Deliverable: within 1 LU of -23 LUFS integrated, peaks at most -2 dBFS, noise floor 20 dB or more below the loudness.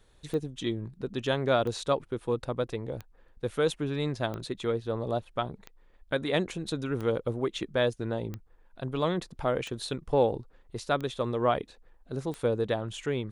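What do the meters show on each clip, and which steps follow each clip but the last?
clicks found 10; loudness -31.0 LUFS; peak level -12.5 dBFS; loudness target -23.0 LUFS
-> de-click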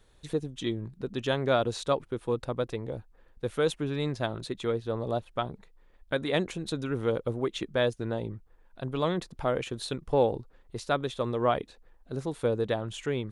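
clicks found 0; loudness -31.0 LUFS; peak level -12.5 dBFS; loudness target -23.0 LUFS
-> trim +8 dB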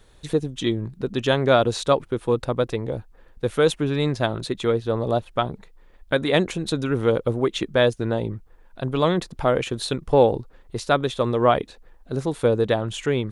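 loudness -23.0 LUFS; peak level -4.5 dBFS; noise floor -52 dBFS

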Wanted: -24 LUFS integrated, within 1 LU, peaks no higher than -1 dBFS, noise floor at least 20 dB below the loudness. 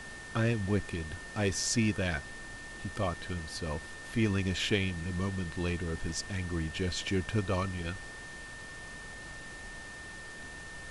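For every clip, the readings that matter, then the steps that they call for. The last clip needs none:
steady tone 1.8 kHz; tone level -45 dBFS; noise floor -45 dBFS; noise floor target -55 dBFS; loudness -34.5 LUFS; peak level -16.0 dBFS; loudness target -24.0 LUFS
-> band-stop 1.8 kHz, Q 30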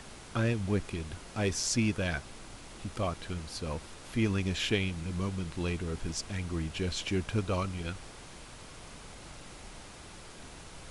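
steady tone not found; noise floor -49 dBFS; noise floor target -54 dBFS
-> noise print and reduce 6 dB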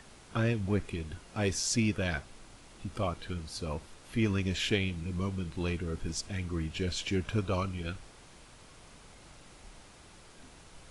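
noise floor -55 dBFS; loudness -33.5 LUFS; peak level -16.5 dBFS; loudness target -24.0 LUFS
-> trim +9.5 dB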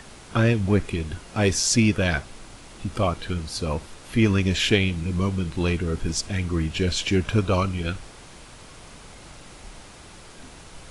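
loudness -24.0 LUFS; peak level -7.0 dBFS; noise floor -45 dBFS

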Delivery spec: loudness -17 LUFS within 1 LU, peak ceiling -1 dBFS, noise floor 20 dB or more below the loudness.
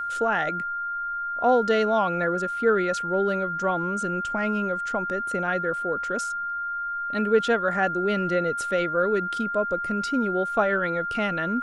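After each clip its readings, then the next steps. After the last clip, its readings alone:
steady tone 1.4 kHz; tone level -27 dBFS; loudness -25.0 LUFS; peak level -8.5 dBFS; loudness target -17.0 LUFS
-> band-stop 1.4 kHz, Q 30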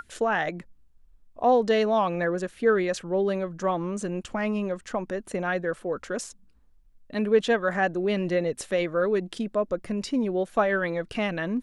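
steady tone not found; loudness -26.5 LUFS; peak level -9.5 dBFS; loudness target -17.0 LUFS
-> trim +9.5 dB; peak limiter -1 dBFS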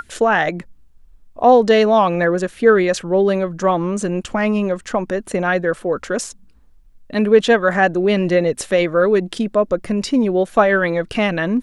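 loudness -17.0 LUFS; peak level -1.0 dBFS; noise floor -48 dBFS

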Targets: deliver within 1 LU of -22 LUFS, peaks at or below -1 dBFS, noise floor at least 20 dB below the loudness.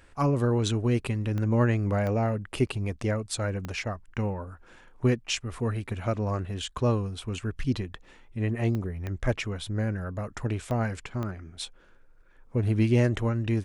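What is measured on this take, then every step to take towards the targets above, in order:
clicks found 7; loudness -29.0 LUFS; peak level -12.5 dBFS; loudness target -22.0 LUFS
-> de-click; trim +7 dB

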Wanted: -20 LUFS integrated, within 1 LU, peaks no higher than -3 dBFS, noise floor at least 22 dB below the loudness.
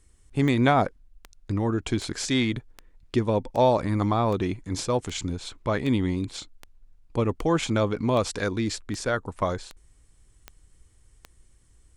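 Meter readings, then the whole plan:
clicks found 15; loudness -26.0 LUFS; peak level -7.5 dBFS; loudness target -20.0 LUFS
-> de-click; trim +6 dB; peak limiter -3 dBFS

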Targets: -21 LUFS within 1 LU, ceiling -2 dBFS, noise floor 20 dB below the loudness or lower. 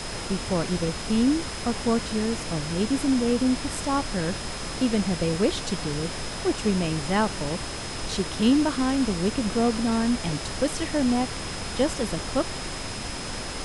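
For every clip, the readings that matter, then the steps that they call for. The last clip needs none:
steady tone 5.1 kHz; tone level -40 dBFS; noise floor -34 dBFS; noise floor target -46 dBFS; loudness -26.0 LUFS; peak level -9.5 dBFS; loudness target -21.0 LUFS
-> band-stop 5.1 kHz, Q 30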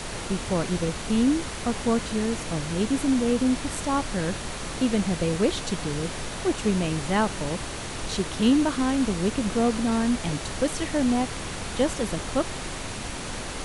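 steady tone not found; noise floor -34 dBFS; noise floor target -46 dBFS
-> noise print and reduce 12 dB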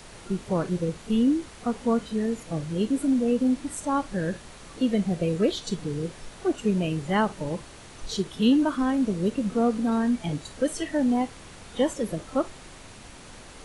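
noise floor -46 dBFS; noise floor target -47 dBFS
-> noise print and reduce 6 dB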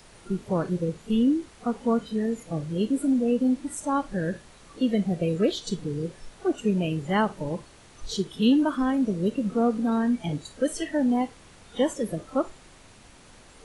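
noise floor -52 dBFS; loudness -26.5 LUFS; peak level -10.5 dBFS; loudness target -21.0 LUFS
-> trim +5.5 dB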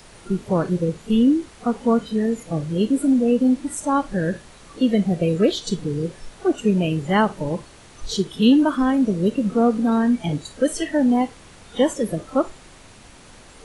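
loudness -21.0 LUFS; peak level -5.0 dBFS; noise floor -46 dBFS

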